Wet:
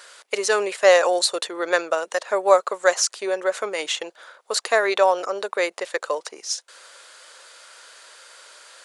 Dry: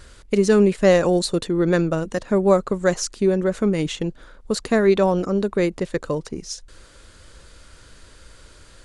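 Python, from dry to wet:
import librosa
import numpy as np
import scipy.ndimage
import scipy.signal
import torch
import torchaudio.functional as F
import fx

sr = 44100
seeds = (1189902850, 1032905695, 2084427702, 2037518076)

y = scipy.signal.sosfilt(scipy.signal.butter(4, 580.0, 'highpass', fs=sr, output='sos'), x)
y = y * 10.0 ** (5.5 / 20.0)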